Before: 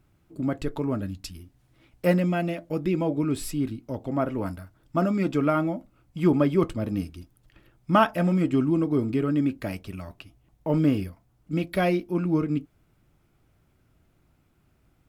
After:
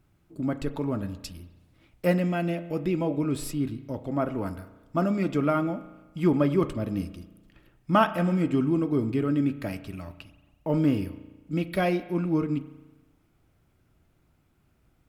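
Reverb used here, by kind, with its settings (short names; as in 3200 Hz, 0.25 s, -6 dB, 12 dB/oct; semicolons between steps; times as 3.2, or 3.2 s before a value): spring tank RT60 1.2 s, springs 35 ms, chirp 30 ms, DRR 12.5 dB; gain -1.5 dB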